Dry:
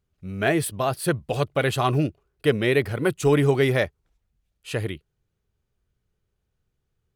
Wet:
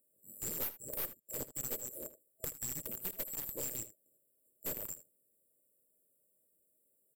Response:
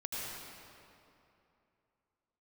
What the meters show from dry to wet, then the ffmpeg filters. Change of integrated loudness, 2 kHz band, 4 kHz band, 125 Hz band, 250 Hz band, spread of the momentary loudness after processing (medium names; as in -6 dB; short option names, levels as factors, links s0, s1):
-16.0 dB, -27.5 dB, -20.0 dB, -29.5 dB, -27.0 dB, 8 LU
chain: -af "afftfilt=real='real(if(lt(b,736),b+184*(1-2*mod(floor(b/184),2)),b),0)':imag='imag(if(lt(b,736),b+184*(1-2*mod(floor(b/184),2)),b),0)':win_size=2048:overlap=0.75,highpass=f=360:p=1,afftfilt=real='re*(1-between(b*sr/4096,650,7300))':imag='im*(1-between(b*sr/4096,650,7300))':win_size=4096:overlap=0.75,equalizer=f=7400:w=2.8:g=-10,acompressor=threshold=0.00224:ratio=16,aeval=exprs='0.00631*(cos(1*acos(clip(val(0)/0.00631,-1,1)))-cos(1*PI/2))+0.00112*(cos(2*acos(clip(val(0)/0.00631,-1,1)))-cos(2*PI/2))+0.001*(cos(5*acos(clip(val(0)/0.00631,-1,1)))-cos(5*PI/2))+0.002*(cos(6*acos(clip(val(0)/0.00631,-1,1)))-cos(6*PI/2))+0.00126*(cos(8*acos(clip(val(0)/0.00631,-1,1)))-cos(8*PI/2))':c=same,aecho=1:1:78:0.178,volume=5.31"